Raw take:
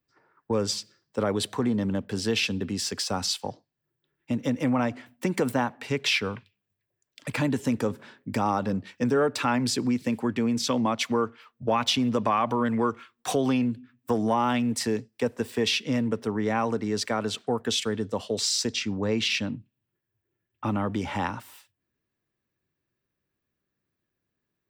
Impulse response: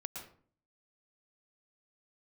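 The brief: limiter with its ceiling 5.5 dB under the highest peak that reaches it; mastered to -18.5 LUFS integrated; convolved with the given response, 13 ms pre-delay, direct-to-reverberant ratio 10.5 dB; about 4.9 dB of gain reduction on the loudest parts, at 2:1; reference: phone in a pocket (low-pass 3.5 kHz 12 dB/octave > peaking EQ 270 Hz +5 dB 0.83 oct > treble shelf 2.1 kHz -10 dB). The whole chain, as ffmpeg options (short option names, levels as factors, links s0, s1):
-filter_complex "[0:a]acompressor=threshold=0.0355:ratio=2,alimiter=limit=0.0841:level=0:latency=1,asplit=2[s0][s1];[1:a]atrim=start_sample=2205,adelay=13[s2];[s1][s2]afir=irnorm=-1:irlink=0,volume=0.355[s3];[s0][s3]amix=inputs=2:normalize=0,lowpass=3500,equalizer=f=270:t=o:w=0.83:g=5,highshelf=f=2100:g=-10,volume=3.98"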